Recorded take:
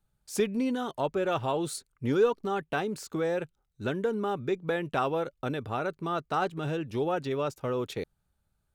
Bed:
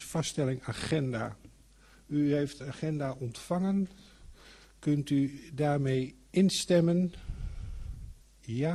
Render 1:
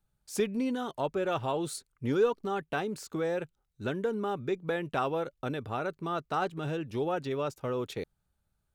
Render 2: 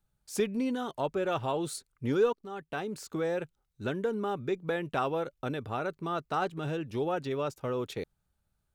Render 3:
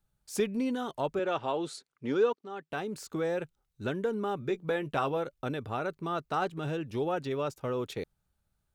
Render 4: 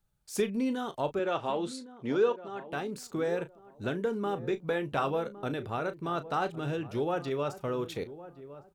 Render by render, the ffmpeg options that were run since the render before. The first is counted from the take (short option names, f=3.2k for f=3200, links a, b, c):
-af "volume=-2dB"
-filter_complex "[0:a]asplit=2[a][b];[a]atrim=end=2.33,asetpts=PTS-STARTPTS,afade=t=out:st=2.326:d=0.004:c=hsin:silence=0.177828[c];[b]atrim=start=2.33,asetpts=PTS-STARTPTS,afade=t=in:d=0.73:silence=0.177828[d];[c][d]concat=n=2:v=0:a=1"
-filter_complex "[0:a]asettb=1/sr,asplit=3[a][b][c];[a]atrim=end=1.194[d];[b]atrim=start=1.19:end=2.71,asetpts=PTS-STARTPTS,afade=t=in:d=0.004:c=qsin,afade=t=out:st=1.516:d=0.004:c=qsin,highpass=210,lowpass=6k[e];[c]atrim=start=2.706[f];[d][e]acrossfade=d=0.004:c1=hsin:c2=qsin[g];[g][f]acrossfade=d=0.004:c1=qsin:c2=hsin,asettb=1/sr,asplit=3[h][i][j];[h]atrim=end=4.394[k];[i]atrim=start=4.39:end=5.17,asetpts=PTS-STARTPTS,afade=t=in:d=0.004:c=qsin,afade=t=out:st=0.776:d=0.004:c=qsin,asplit=2[l][m];[m]adelay=14,volume=-10dB[n];[l][n]amix=inputs=2:normalize=0,atrim=end_sample=34398[o];[j]atrim=start=5.166[p];[k][o]acrossfade=d=0.004:c1=hsin:c2=qsin[q];[q][p]acrossfade=d=0.004:c1=qsin:c2=hsin"
-filter_complex "[0:a]asplit=2[a][b];[b]adelay=35,volume=-12.5dB[c];[a][c]amix=inputs=2:normalize=0,asplit=2[d][e];[e]adelay=1110,lowpass=f=870:p=1,volume=-14dB,asplit=2[f][g];[g]adelay=1110,lowpass=f=870:p=1,volume=0.29,asplit=2[h][i];[i]adelay=1110,lowpass=f=870:p=1,volume=0.29[j];[d][f][h][j]amix=inputs=4:normalize=0"